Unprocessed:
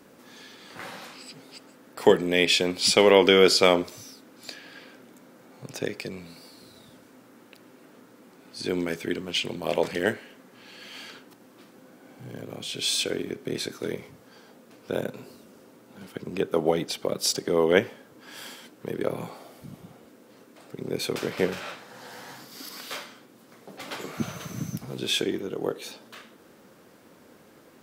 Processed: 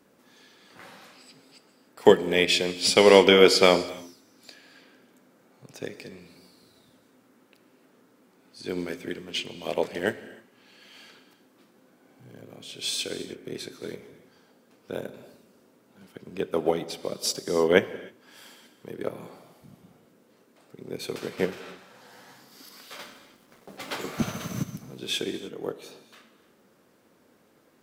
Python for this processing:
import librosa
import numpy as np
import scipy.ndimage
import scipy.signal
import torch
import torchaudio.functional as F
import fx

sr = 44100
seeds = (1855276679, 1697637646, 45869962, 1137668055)

y = fx.leveller(x, sr, passes=2, at=(22.99, 24.63))
y = fx.rev_gated(y, sr, seeds[0], gate_ms=330, shape='flat', drr_db=9.5)
y = fx.upward_expand(y, sr, threshold_db=-34.0, expansion=1.5)
y = y * 10.0 ** (2.5 / 20.0)